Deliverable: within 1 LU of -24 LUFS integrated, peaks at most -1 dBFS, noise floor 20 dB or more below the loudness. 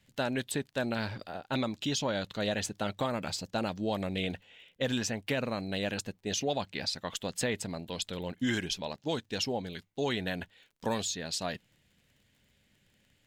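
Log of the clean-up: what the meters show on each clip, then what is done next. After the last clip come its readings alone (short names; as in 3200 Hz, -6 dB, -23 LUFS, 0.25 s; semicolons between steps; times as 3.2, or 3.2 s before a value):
ticks 35/s; loudness -34.0 LUFS; peak -19.5 dBFS; loudness target -24.0 LUFS
-> de-click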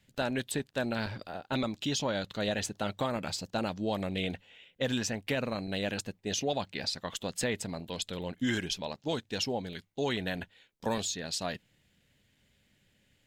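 ticks 0.15/s; loudness -34.0 LUFS; peak -19.5 dBFS; loudness target -24.0 LUFS
-> gain +10 dB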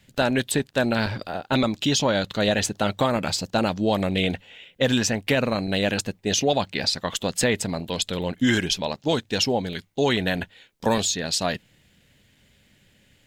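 loudness -24.0 LUFS; peak -9.5 dBFS; noise floor -61 dBFS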